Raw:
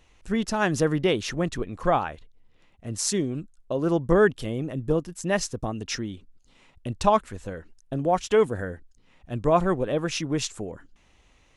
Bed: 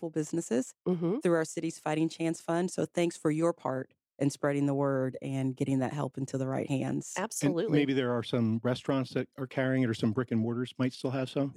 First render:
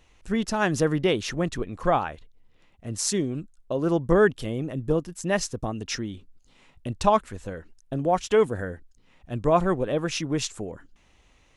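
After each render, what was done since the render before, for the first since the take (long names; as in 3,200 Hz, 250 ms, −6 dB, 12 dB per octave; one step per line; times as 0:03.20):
0:06.12–0:06.89: double-tracking delay 20 ms −10.5 dB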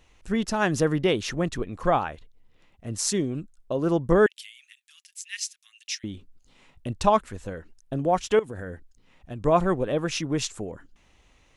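0:04.26–0:06.04: Butterworth high-pass 2,100 Hz
0:08.39–0:09.42: downward compressor 10 to 1, threshold −30 dBFS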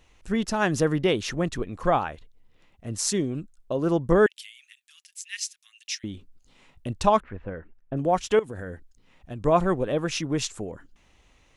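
0:07.20–0:07.97: low-pass filter 2,400 Hz 24 dB per octave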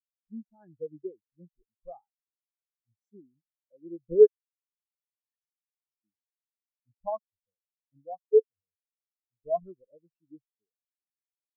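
every bin expanded away from the loudest bin 4 to 1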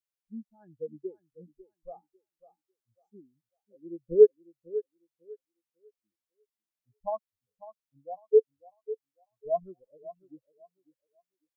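feedback echo with a high-pass in the loop 548 ms, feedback 25%, high-pass 270 Hz, level −14.5 dB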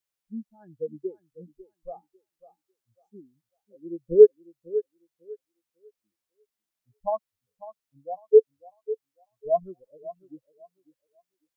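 level +5 dB
brickwall limiter −3 dBFS, peak gain reduction 1.5 dB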